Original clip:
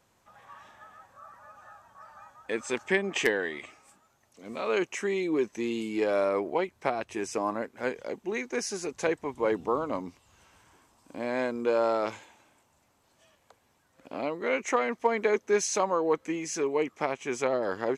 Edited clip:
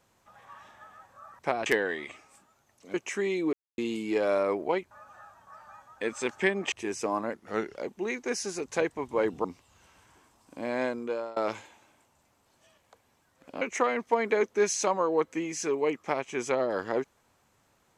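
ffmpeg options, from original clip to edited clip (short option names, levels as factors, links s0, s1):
-filter_complex "[0:a]asplit=13[s0][s1][s2][s3][s4][s5][s6][s7][s8][s9][s10][s11][s12];[s0]atrim=end=1.392[s13];[s1]atrim=start=6.768:end=7.042[s14];[s2]atrim=start=3.198:end=4.482[s15];[s3]atrim=start=4.798:end=5.39,asetpts=PTS-STARTPTS,afade=t=out:st=0.588:d=0.004:c=hsin[s16];[s4]atrim=start=5.39:end=5.64,asetpts=PTS-STARTPTS,volume=0[s17];[s5]atrim=start=5.64:end=6.772,asetpts=PTS-STARTPTS,afade=t=in:d=0.004:c=hsin[s18];[s6]atrim=start=1.388:end=3.202[s19];[s7]atrim=start=7.038:end=7.664[s20];[s8]atrim=start=7.66:end=8.02,asetpts=PTS-STARTPTS,asetrate=38367,aresample=44100,atrim=end_sample=18248,asetpts=PTS-STARTPTS[s21];[s9]atrim=start=8.016:end=9.712[s22];[s10]atrim=start=10.018:end=11.94,asetpts=PTS-STARTPTS,afade=t=out:st=1.402:d=0.52:silence=0.0707946[s23];[s11]atrim=start=11.94:end=14.192,asetpts=PTS-STARTPTS,afade=t=in:d=0.004:c=hsin:silence=0.0707946[s24];[s12]atrim=start=14.538[s25];[s13][s14]acrossfade=d=0.004:c1=hsin:c2=hsin[s26];[s26][s15]acrossfade=d=0.004:c1=hsin:c2=hsin[s27];[s16][s17][s18]concat=n=3:v=0:a=1[s28];[s27][s28]acrossfade=d=0.004:c1=hsin:c2=hsin[s29];[s29][s19]acrossfade=d=0.004:c1=hsin:c2=hsin[s30];[s30][s20]acrossfade=d=0.004:c1=hsin:c2=hsin[s31];[s31][s21]acrossfade=d=0.004:c1=hsin:c2=hsin[s32];[s32][s22]acrossfade=d=0.004:c1=hsin:c2=hsin[s33];[s23][s24]concat=n=2:v=0:a=1[s34];[s33][s34]acrossfade=d=0.004:c1=hsin:c2=hsin[s35];[s35][s25]acrossfade=d=0.004:c1=hsin:c2=hsin"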